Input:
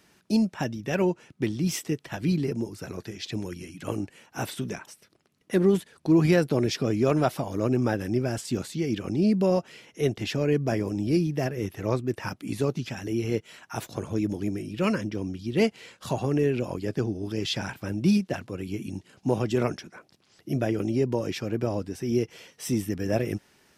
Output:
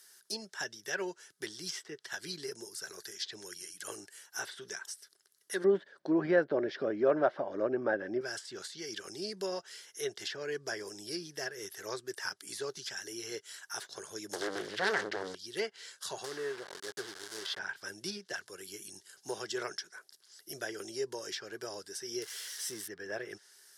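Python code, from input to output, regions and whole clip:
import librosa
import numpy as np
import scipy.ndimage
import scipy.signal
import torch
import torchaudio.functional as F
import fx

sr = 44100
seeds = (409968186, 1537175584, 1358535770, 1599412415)

y = fx.chain(x, sr, fx.lowpass(hz=2500.0, slope=12),
    fx.small_body(hz=(260.0, 560.0), ring_ms=25, db=15), at=(5.64, 8.21))
y = fx.chain(y, sr, fx.high_shelf(hz=9600.0, db=5.0),
    fx.leveller(passes=3),
    fx.doppler_dist(depth_ms=0.96), at=(14.33, 15.35))
y = fx.chain(y, sr, fx.delta_hold(step_db=-31.0),
    fx.low_shelf(hz=170.0, db=-7.0), at=(16.24, 17.59))
y = fx.chain(y, sr, fx.crossing_spikes(level_db=-25.0),
    fx.high_shelf(hz=8300.0, db=8.5), at=(22.22, 22.88))
y = np.diff(y, prepend=0.0)
y = fx.env_lowpass_down(y, sr, base_hz=2500.0, full_db=-37.5)
y = fx.graphic_eq_31(y, sr, hz=(250, 400, 1600, 2500, 5000, 10000), db=(-10, 10, 9, -12, 3, 4))
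y = y * librosa.db_to_amplitude(7.0)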